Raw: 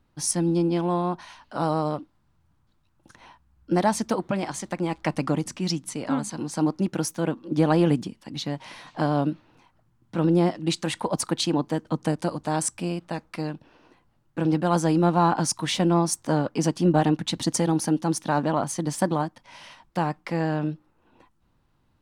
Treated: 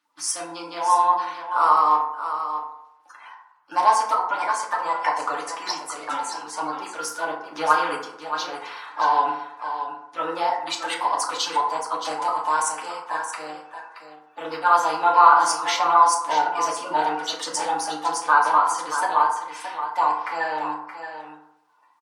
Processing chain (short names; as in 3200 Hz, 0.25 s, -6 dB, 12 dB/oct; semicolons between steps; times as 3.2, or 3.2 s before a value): bin magnitudes rounded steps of 30 dB; resonant high-pass 1100 Hz, resonance Q 2.7; high shelf 8400 Hz -4 dB; echo 0.624 s -9.5 dB; FDN reverb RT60 0.81 s, low-frequency decay 0.8×, high-frequency decay 0.4×, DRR -2.5 dB